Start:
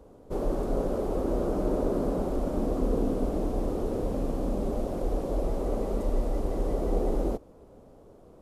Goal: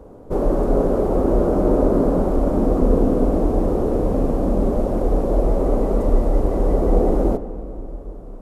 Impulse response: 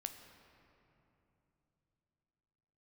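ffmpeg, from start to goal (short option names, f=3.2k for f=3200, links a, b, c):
-filter_complex "[0:a]asplit=2[a][b];[1:a]atrim=start_sample=2205,lowpass=2.1k[c];[b][c]afir=irnorm=-1:irlink=0,volume=5dB[d];[a][d]amix=inputs=2:normalize=0,volume=3.5dB"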